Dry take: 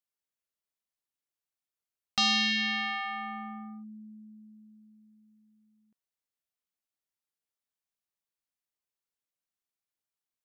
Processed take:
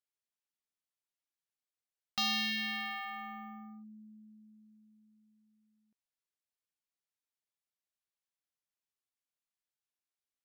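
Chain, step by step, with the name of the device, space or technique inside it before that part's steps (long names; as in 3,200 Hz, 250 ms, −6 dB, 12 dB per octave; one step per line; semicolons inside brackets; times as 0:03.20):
crushed at another speed (tape speed factor 0.5×; decimation without filtering 4×; tape speed factor 2×)
level −6.5 dB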